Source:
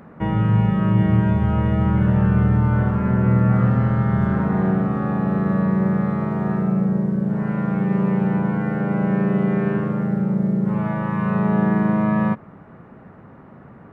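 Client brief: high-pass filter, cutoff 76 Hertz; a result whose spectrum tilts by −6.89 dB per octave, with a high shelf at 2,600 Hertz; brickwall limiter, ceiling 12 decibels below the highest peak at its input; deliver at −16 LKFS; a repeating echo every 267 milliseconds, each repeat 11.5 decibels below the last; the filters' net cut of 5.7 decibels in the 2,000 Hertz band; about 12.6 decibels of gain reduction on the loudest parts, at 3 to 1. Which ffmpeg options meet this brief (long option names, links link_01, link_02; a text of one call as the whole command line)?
ffmpeg -i in.wav -af "highpass=76,equalizer=frequency=2000:width_type=o:gain=-6,highshelf=frequency=2600:gain=-4.5,acompressor=threshold=-31dB:ratio=3,alimiter=level_in=6.5dB:limit=-24dB:level=0:latency=1,volume=-6.5dB,aecho=1:1:267|534|801:0.266|0.0718|0.0194,volume=22.5dB" out.wav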